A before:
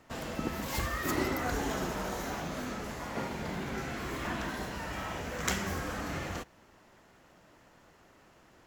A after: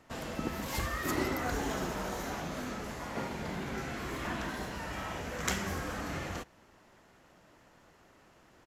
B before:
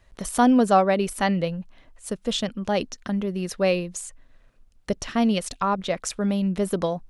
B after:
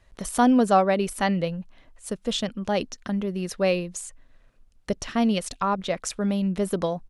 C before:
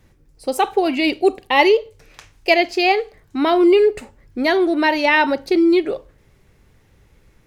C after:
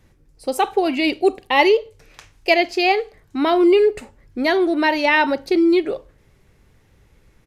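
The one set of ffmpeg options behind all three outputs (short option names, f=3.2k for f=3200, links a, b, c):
-af "aresample=32000,aresample=44100,volume=-1dB"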